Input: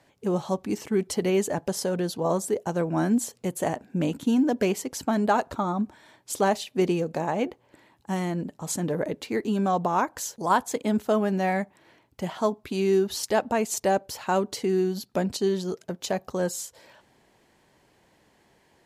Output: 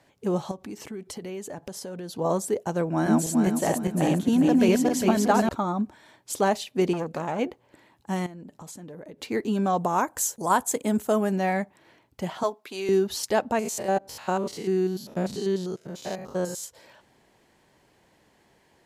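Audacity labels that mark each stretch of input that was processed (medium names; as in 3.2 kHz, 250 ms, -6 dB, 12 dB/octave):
0.510000	2.150000	compression 4:1, threshold -35 dBFS
2.860000	5.490000	backward echo that repeats 203 ms, feedback 53%, level 0 dB
6.930000	7.390000	transformer saturation saturates under 890 Hz
8.260000	9.190000	compression 8:1, threshold -39 dBFS
9.780000	11.360000	resonant high shelf 6.1 kHz +7.5 dB, Q 1.5
12.430000	12.890000	high-pass 480 Hz
13.590000	16.640000	spectrogram pixelated in time every 100 ms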